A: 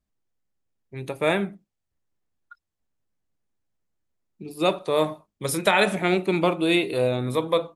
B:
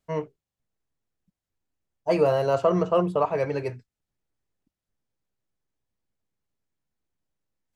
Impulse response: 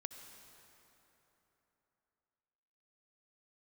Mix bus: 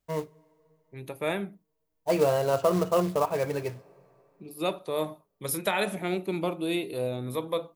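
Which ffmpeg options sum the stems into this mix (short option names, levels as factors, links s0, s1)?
-filter_complex "[0:a]adynamicequalizer=threshold=0.0141:dfrequency=1800:dqfactor=0.74:tfrequency=1800:tqfactor=0.74:attack=5:release=100:ratio=0.375:range=3:mode=cutabove:tftype=bell,aexciter=amount=5.2:drive=3:freq=11000,volume=0.447[s0];[1:a]acrusher=bits=4:mode=log:mix=0:aa=0.000001,volume=0.668,asplit=2[s1][s2];[s2]volume=0.188[s3];[2:a]atrim=start_sample=2205[s4];[s3][s4]afir=irnorm=-1:irlink=0[s5];[s0][s1][s5]amix=inputs=3:normalize=0"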